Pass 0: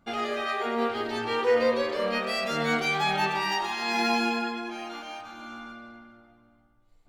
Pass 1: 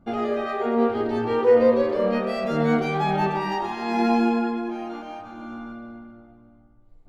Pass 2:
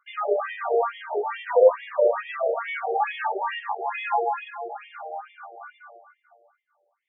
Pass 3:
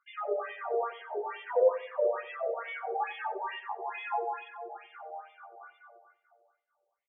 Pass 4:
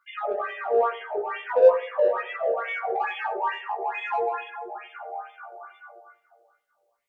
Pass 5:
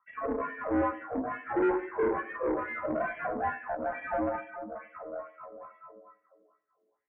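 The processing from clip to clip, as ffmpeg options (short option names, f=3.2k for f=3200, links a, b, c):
-af "tiltshelf=f=1.2k:g=10"
-af "afftfilt=real='re*between(b*sr/1024,540*pow(2600/540,0.5+0.5*sin(2*PI*2.3*pts/sr))/1.41,540*pow(2600/540,0.5+0.5*sin(2*PI*2.3*pts/sr))*1.41)':imag='im*between(b*sr/1024,540*pow(2600/540,0.5+0.5*sin(2*PI*2.3*pts/sr))/1.41,540*pow(2600/540,0.5+0.5*sin(2*PI*2.3*pts/sr))*1.41)':win_size=1024:overlap=0.75,volume=5dB"
-filter_complex "[0:a]asplit=2[a][b];[b]adelay=91,lowpass=f=1k:p=1,volume=-13dB,asplit=2[c][d];[d]adelay=91,lowpass=f=1k:p=1,volume=0.41,asplit=2[e][f];[f]adelay=91,lowpass=f=1k:p=1,volume=0.41,asplit=2[g][h];[h]adelay=91,lowpass=f=1k:p=1,volume=0.41[i];[a][c][e][g][i]amix=inputs=5:normalize=0,volume=-8.5dB"
-filter_complex "[0:a]asplit=2[a][b];[b]asoftclip=type=tanh:threshold=-29.5dB,volume=-8dB[c];[a][c]amix=inputs=2:normalize=0,flanger=delay=15.5:depth=2.2:speed=0.38,volume=8.5dB"
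-af "aeval=exprs='(tanh(14.1*val(0)+0.7)-tanh(0.7))/14.1':c=same,highpass=f=190:t=q:w=0.5412,highpass=f=190:t=q:w=1.307,lowpass=f=2.2k:t=q:w=0.5176,lowpass=f=2.2k:t=q:w=0.7071,lowpass=f=2.2k:t=q:w=1.932,afreqshift=-150"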